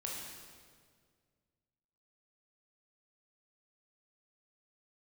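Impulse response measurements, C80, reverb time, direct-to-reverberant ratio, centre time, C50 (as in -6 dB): 2.5 dB, 1.9 s, -3.0 dB, 91 ms, 0.0 dB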